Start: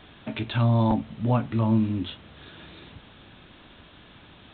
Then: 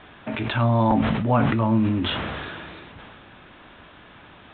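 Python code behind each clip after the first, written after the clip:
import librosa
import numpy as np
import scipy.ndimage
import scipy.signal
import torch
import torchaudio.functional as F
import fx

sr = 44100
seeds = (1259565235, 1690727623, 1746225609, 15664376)

y = scipy.signal.sosfilt(scipy.signal.butter(2, 2100.0, 'lowpass', fs=sr, output='sos'), x)
y = fx.low_shelf(y, sr, hz=460.0, db=-9.0)
y = fx.sustainer(y, sr, db_per_s=23.0)
y = y * librosa.db_to_amplitude(8.0)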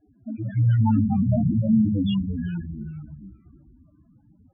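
y = fx.spec_topn(x, sr, count=2)
y = fx.echo_pitch(y, sr, ms=140, semitones=-2, count=3, db_per_echo=-6.0)
y = fx.env_lowpass(y, sr, base_hz=320.0, full_db=-19.0)
y = y * librosa.db_to_amplitude(3.5)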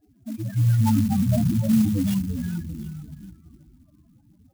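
y = x + 10.0 ** (-21.5 / 20.0) * np.pad(x, (int(735 * sr / 1000.0), 0))[:len(x)]
y = fx.clock_jitter(y, sr, seeds[0], jitter_ms=0.068)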